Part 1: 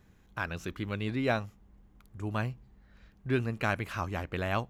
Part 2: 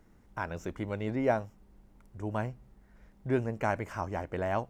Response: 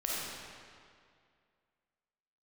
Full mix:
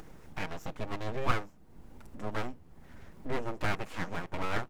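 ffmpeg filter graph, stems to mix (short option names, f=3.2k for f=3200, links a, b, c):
-filter_complex "[0:a]volume=-17.5dB[a];[1:a]aecho=1:1:6.4:0.9,acompressor=mode=upward:threshold=-36dB:ratio=2.5,volume=-1.5dB[b];[a][b]amix=inputs=2:normalize=0,aeval=exprs='abs(val(0))':c=same"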